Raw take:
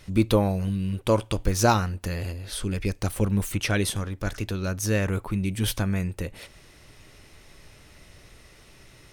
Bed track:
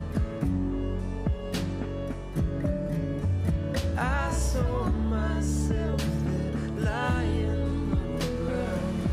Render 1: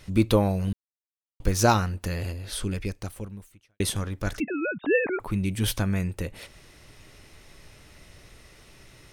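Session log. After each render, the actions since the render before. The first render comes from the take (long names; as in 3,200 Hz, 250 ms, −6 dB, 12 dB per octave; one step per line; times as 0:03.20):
0:00.73–0:01.40: silence
0:02.63–0:03.80: fade out quadratic
0:04.40–0:05.20: three sine waves on the formant tracks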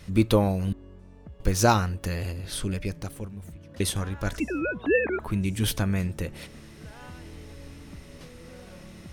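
mix in bed track −17.5 dB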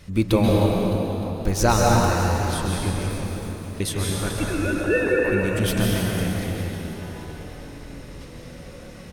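echo with shifted repeats 306 ms, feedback 59%, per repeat +69 Hz, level −13.5 dB
dense smooth reverb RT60 3 s, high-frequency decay 0.8×, pre-delay 120 ms, DRR −3 dB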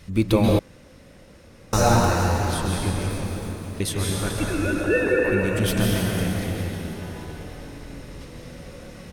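0:00.59–0:01.73: fill with room tone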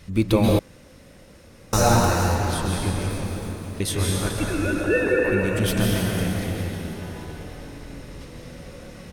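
0:00.42–0:02.35: high-shelf EQ 6,800 Hz +5 dB
0:03.86–0:04.28: double-tracking delay 22 ms −5 dB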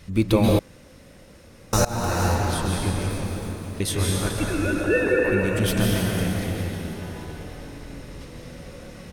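0:01.85–0:02.26: fade in, from −23 dB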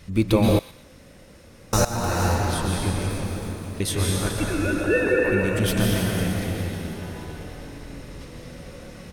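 delay with a high-pass on its return 120 ms, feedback 33%, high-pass 1,400 Hz, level −13.5 dB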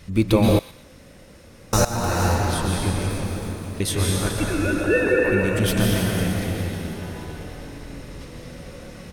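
level +1.5 dB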